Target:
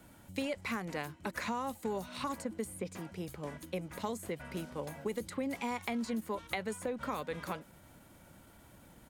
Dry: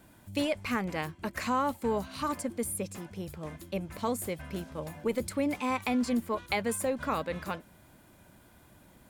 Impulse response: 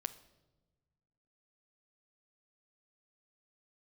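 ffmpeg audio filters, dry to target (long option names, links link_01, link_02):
-filter_complex "[0:a]asetrate=41625,aresample=44100,atempo=1.05946,acrossover=split=160|4000[link_01][link_02][link_03];[link_01]acompressor=threshold=-55dB:ratio=4[link_04];[link_02]acompressor=threshold=-34dB:ratio=4[link_05];[link_03]acompressor=threshold=-50dB:ratio=4[link_06];[link_04][link_05][link_06]amix=inputs=3:normalize=0"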